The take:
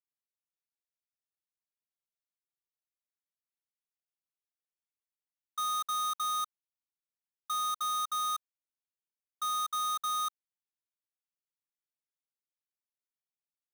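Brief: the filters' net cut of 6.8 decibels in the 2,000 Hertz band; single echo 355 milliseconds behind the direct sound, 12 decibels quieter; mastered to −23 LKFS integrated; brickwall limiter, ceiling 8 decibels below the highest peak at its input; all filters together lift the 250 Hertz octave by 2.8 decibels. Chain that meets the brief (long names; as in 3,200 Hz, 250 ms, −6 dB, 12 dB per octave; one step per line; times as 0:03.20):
parametric band 250 Hz +5.5 dB
parametric band 2,000 Hz −8.5 dB
brickwall limiter −38 dBFS
single-tap delay 355 ms −12 dB
level +19.5 dB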